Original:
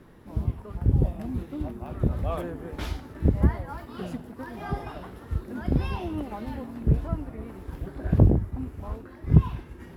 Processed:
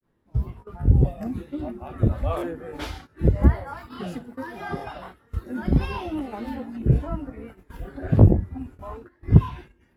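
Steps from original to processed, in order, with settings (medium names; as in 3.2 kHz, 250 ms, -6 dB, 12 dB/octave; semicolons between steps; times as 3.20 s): granulator 143 ms, spray 19 ms, pitch spread up and down by 0 st; spectral noise reduction 8 dB; gate -48 dBFS, range -14 dB; trim +6.5 dB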